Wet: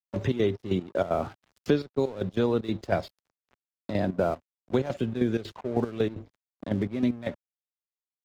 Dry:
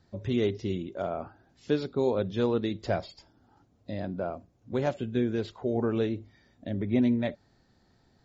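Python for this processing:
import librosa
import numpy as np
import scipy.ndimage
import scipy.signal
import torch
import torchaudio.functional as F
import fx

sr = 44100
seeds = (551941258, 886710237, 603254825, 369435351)

y = fx.rider(x, sr, range_db=4, speed_s=0.5)
y = fx.step_gate(y, sr, bpm=190, pattern='x.xx.xx..x..x.xx', floor_db=-12.0, edge_ms=4.5)
y = np.sign(y) * np.maximum(np.abs(y) - 10.0 ** (-54.0 / 20.0), 0.0)
y = fx.vibrato(y, sr, rate_hz=1.6, depth_cents=22.0)
y = fx.band_squash(y, sr, depth_pct=70)
y = y * librosa.db_to_amplitude(4.5)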